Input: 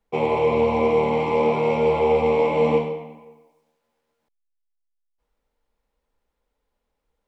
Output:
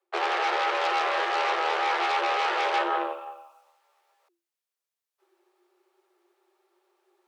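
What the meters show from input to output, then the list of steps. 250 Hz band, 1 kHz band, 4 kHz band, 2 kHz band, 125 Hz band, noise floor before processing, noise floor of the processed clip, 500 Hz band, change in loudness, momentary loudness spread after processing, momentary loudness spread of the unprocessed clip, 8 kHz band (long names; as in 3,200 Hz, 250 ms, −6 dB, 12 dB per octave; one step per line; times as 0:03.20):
−15.0 dB, +0.5 dB, +7.5 dB, +5.0 dB, below −40 dB, −78 dBFS, below −85 dBFS, −13.0 dB, −5.5 dB, 4 LU, 4 LU, can't be measured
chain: harmonic generator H 8 −8 dB, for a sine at −8 dBFS
reversed playback
downward compressor 6 to 1, threshold −31 dBFS, peak gain reduction 17 dB
reversed playback
frequency shifter +340 Hz
level +6.5 dB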